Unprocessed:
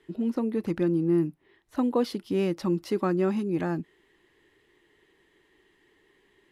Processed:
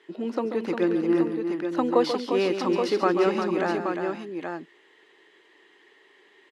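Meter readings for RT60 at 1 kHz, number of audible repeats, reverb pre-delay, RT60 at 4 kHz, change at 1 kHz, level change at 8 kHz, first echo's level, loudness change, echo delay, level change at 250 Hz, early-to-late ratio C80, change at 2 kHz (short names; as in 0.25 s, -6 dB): none, 4, none, none, +8.5 dB, n/a, -10.0 dB, +2.0 dB, 0.137 s, +1.0 dB, none, +9.0 dB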